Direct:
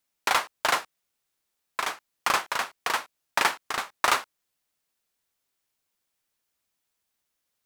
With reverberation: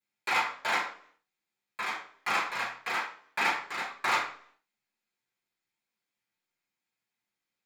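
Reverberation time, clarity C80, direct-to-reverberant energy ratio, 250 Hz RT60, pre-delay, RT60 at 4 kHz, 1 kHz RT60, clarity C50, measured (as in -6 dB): 0.55 s, 10.0 dB, -11.0 dB, 0.60 s, 3 ms, 0.45 s, 0.50 s, 6.5 dB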